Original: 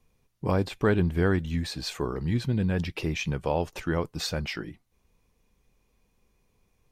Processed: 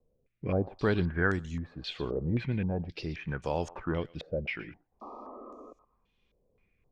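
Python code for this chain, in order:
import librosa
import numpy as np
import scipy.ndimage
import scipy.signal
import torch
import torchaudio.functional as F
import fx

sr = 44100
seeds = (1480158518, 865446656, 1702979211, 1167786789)

y = fx.spec_paint(x, sr, seeds[0], shape='noise', start_s=5.01, length_s=0.72, low_hz=210.0, high_hz=1300.0, level_db=-40.0)
y = fx.echo_thinned(y, sr, ms=118, feedback_pct=20, hz=990.0, wet_db=-17.0)
y = fx.rotary(y, sr, hz=0.75)
y = fx.filter_held_lowpass(y, sr, hz=3.8, low_hz=550.0, high_hz=6800.0)
y = F.gain(torch.from_numpy(y), -4.0).numpy()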